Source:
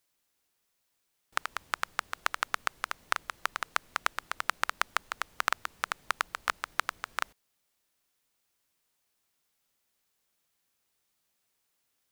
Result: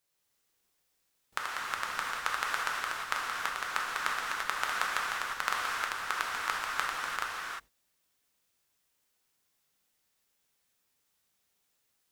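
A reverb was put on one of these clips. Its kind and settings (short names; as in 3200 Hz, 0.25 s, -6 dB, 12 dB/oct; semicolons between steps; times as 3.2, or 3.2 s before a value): non-linear reverb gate 0.38 s flat, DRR -4 dB; gain -4.5 dB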